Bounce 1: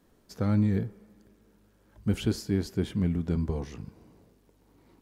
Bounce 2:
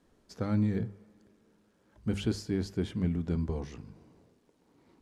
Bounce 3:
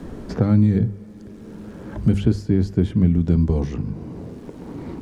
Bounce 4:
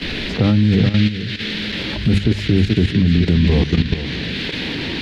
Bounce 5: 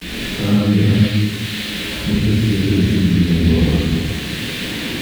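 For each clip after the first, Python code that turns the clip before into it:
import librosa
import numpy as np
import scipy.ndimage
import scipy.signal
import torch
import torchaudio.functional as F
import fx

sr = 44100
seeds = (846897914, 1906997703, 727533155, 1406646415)

y1 = scipy.signal.sosfilt(scipy.signal.butter(2, 9100.0, 'lowpass', fs=sr, output='sos'), x)
y1 = fx.hum_notches(y1, sr, base_hz=50, count=4)
y1 = y1 * 10.0 ** (-2.5 / 20.0)
y2 = fx.low_shelf(y1, sr, hz=390.0, db=11.5)
y2 = fx.band_squash(y2, sr, depth_pct=70)
y2 = y2 * 10.0 ** (4.5 / 20.0)
y3 = fx.dmg_noise_band(y2, sr, seeds[0], low_hz=1600.0, high_hz=4200.0, level_db=-35.0)
y3 = y3 + 10.0 ** (-8.5 / 20.0) * np.pad(y3, (int(428 * sr / 1000.0), 0))[:len(y3)]
y3 = fx.level_steps(y3, sr, step_db=11)
y3 = y3 * 10.0 ** (9.0 / 20.0)
y4 = np.where(np.abs(y3) >= 10.0 ** (-27.5 / 20.0), y3, 0.0)
y4 = fx.rev_gated(y4, sr, seeds[1], gate_ms=250, shape='flat', drr_db=-7.5)
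y4 = y4 * 10.0 ** (-7.5 / 20.0)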